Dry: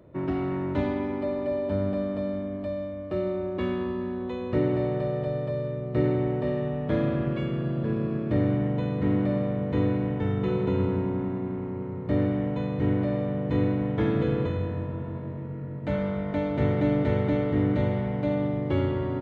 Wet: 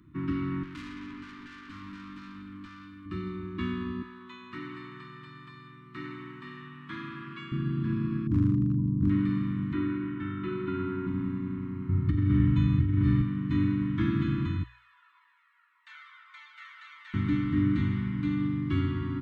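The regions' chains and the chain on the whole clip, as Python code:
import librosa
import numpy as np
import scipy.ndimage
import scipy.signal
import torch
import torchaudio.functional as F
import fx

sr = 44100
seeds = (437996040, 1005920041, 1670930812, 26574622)

y = fx.chain(x, sr, fx.tilt_eq(slope=2.0),
    fx.tube_stage(drive_db=36.0, bias=0.4), at=(0.63, 3.06))
y = fx.chain(y, sr, fx.cheby1_highpass(hz=180.0, order=2),
    fx.low_shelf_res(hz=410.0, db=-11.5, q=1.5), at=(4.02, 7.52))
y = fx.chain(y, sr, fx.gaussian_blur(sigma=12.0),
    fx.low_shelf(hz=160.0, db=6.5),
    fx.clip_hard(threshold_db=-17.5), at=(8.27, 9.1))
y = fx.chain(y, sr, fx.lowpass(hz=2900.0, slope=12),
    fx.low_shelf(hz=280.0, db=-11.5),
    fx.small_body(hz=(360.0, 650.0, 1400.0), ring_ms=45, db=11), at=(9.73, 11.07))
y = fx.chain(y, sr, fx.peak_eq(hz=69.0, db=14.0, octaves=2.2),
    fx.comb(ms=2.3, depth=0.36),
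    fx.over_compress(threshold_db=-21.0, ratio=-1.0), at=(11.89, 13.22))
y = fx.chain(y, sr, fx.bessel_highpass(hz=1300.0, order=8),
    fx.comb_cascade(direction='falling', hz=1.7), at=(14.63, 17.14))
y = scipy.signal.sosfilt(scipy.signal.ellip(3, 1.0, 40, [320.0, 1100.0], 'bandstop', fs=sr, output='sos'), y)
y = fx.hum_notches(y, sr, base_hz=60, count=2)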